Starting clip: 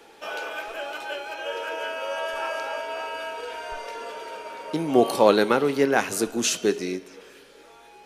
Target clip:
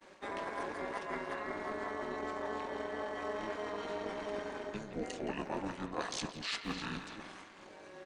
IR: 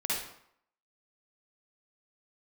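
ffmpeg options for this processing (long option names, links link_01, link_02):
-filter_complex "[0:a]agate=range=-33dB:threshold=-46dB:ratio=3:detection=peak,asetrate=29433,aresample=44100,atempo=1.49831,highpass=420,asplit=2[link_01][link_02];[link_02]aecho=0:1:294:0.0841[link_03];[link_01][link_03]amix=inputs=2:normalize=0,asplit=2[link_04][link_05];[link_05]asetrate=29433,aresample=44100,atempo=1.49831,volume=-3dB[link_06];[link_04][link_06]amix=inputs=2:normalize=0,areverse,acompressor=threshold=-37dB:ratio=6,areverse,asplit=2[link_07][link_08];[link_08]adelay=170,highpass=300,lowpass=3400,asoftclip=type=hard:threshold=-36dB,volume=-8dB[link_09];[link_07][link_09]amix=inputs=2:normalize=0,tremolo=f=210:d=0.667,volume=3dB"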